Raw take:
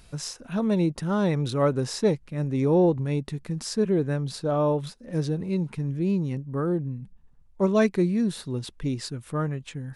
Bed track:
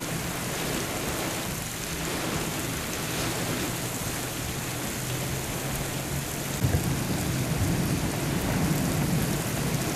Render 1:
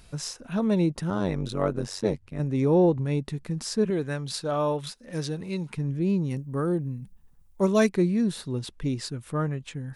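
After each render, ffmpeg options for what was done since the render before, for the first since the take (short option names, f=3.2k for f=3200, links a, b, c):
-filter_complex "[0:a]asettb=1/sr,asplit=3[a][b][c];[a]atrim=end=1.104[d];[b]atrim=start=1.1:end=2.4,asetpts=PTS-STARTPTS,afade=t=in:d=0.004:c=qsin,afade=t=out:st=1.296:d=0.004:c=qsin,tremolo=f=95:d=0.889[e];[c]atrim=start=2.396[f];[d][e]acrossfade=d=0.004:c1=hsin:c2=qsin[g];[g][f]acrossfade=d=0.004:c1=qsin:c2=hsin,asettb=1/sr,asplit=3[h][i][j];[h]atrim=end=3.904[k];[i]atrim=start=3.9:end=5.74,asetpts=PTS-STARTPTS,afade=t=in:d=0.004:c=qsin,afade=t=out:st=1.836:d=0.004:c=qsin,tiltshelf=f=930:g=-5.5[l];[j]atrim=start=5.736[m];[k][l]acrossfade=d=0.004:c1=hsin:c2=qsin[n];[n][m]acrossfade=d=0.004:c1=qsin:c2=hsin,asettb=1/sr,asplit=3[o][p][q];[o]atrim=end=6.304[r];[p]atrim=start=6.3:end=7.9,asetpts=PTS-STARTPTS,afade=t=in:d=0.004:c=qsin,afade=t=out:st=1.596:d=0.004:c=qsin,aemphasis=mode=production:type=50fm[s];[q]atrim=start=7.896[t];[r][s]acrossfade=d=0.004:c1=hsin:c2=qsin[u];[u][t]acrossfade=d=0.004:c1=qsin:c2=hsin"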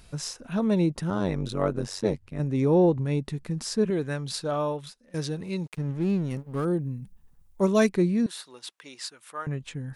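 -filter_complex "[0:a]asettb=1/sr,asplit=3[a][b][c];[a]atrim=end=5.664[d];[b]atrim=start=5.66:end=6.65,asetpts=PTS-STARTPTS,afade=t=in:d=0.004:c=qsin,afade=t=out:st=0.986:d=0.004:c=qsin,aeval=exprs='sgn(val(0))*max(abs(val(0))-0.00708,0)':c=same[e];[c]atrim=start=6.646[f];[d][e]acrossfade=d=0.004:c1=hsin:c2=qsin[g];[g][f]acrossfade=d=0.004:c1=qsin:c2=hsin,asettb=1/sr,asplit=3[h][i][j];[h]atrim=end=8.264[k];[i]atrim=start=8.26:end=9.47,asetpts=PTS-STARTPTS,afade=t=in:d=0.004:c=qsin,afade=t=out:st=1.206:d=0.004:c=qsin,highpass=910[l];[j]atrim=start=9.466[m];[k][l]acrossfade=d=0.004:c1=hsin:c2=qsin[n];[n][m]acrossfade=d=0.004:c1=qsin:c2=hsin,asplit=2[o][p];[o]atrim=end=5.14,asetpts=PTS-STARTPTS,afade=t=out:st=4.47:d=0.67:silence=0.149624[q];[p]atrim=start=5.14,asetpts=PTS-STARTPTS,afade=t=in:d=0.004:c=hsin:silence=0.149624[r];[q][r]concat=n=2:v=0:a=1"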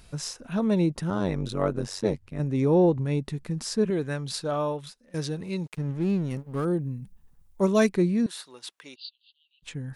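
-filter_complex "[0:a]asplit=3[a][b][c];[a]afade=t=out:st=8.94:d=0.02[d];[b]asuperpass=centerf=3600:order=20:qfactor=1.8,afade=t=in:st=8.94:d=0.02,afade=t=out:st=9.62:d=0.02[e];[c]afade=t=in:st=9.62:d=0.02[f];[d][e][f]amix=inputs=3:normalize=0"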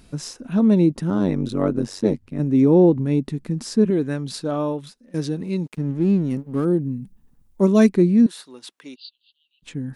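-af "equalizer=f=260:w=1.2:g=11.5"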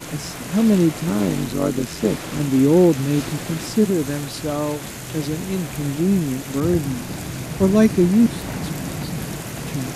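-filter_complex "[1:a]volume=-1.5dB[a];[0:a][a]amix=inputs=2:normalize=0"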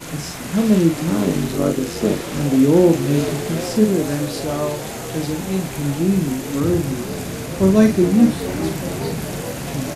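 -filter_complex "[0:a]asplit=2[a][b];[b]adelay=42,volume=-5.5dB[c];[a][c]amix=inputs=2:normalize=0,asplit=8[d][e][f][g][h][i][j][k];[e]adelay=419,afreqshift=86,volume=-13.5dB[l];[f]adelay=838,afreqshift=172,volume=-17.4dB[m];[g]adelay=1257,afreqshift=258,volume=-21.3dB[n];[h]adelay=1676,afreqshift=344,volume=-25.1dB[o];[i]adelay=2095,afreqshift=430,volume=-29dB[p];[j]adelay=2514,afreqshift=516,volume=-32.9dB[q];[k]adelay=2933,afreqshift=602,volume=-36.8dB[r];[d][l][m][n][o][p][q][r]amix=inputs=8:normalize=0"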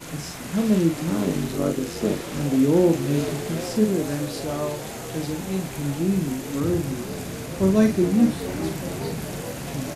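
-af "volume=-5dB"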